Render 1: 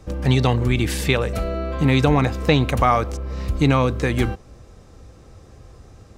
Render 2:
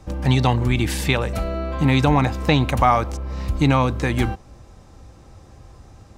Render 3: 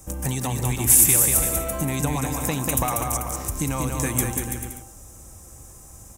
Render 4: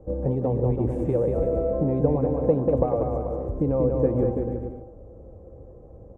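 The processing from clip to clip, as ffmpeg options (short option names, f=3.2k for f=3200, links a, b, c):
-af "superequalizer=7b=0.631:9b=1.58"
-filter_complex "[0:a]acompressor=threshold=-18dB:ratio=6,aexciter=amount=15.2:drive=6.6:freq=6.6k,asplit=2[a][b];[b]aecho=0:1:190|332.5|439.4|519.5|579.6:0.631|0.398|0.251|0.158|0.1[c];[a][c]amix=inputs=2:normalize=0,volume=-4.5dB"
-af "lowpass=f=500:t=q:w=4.9"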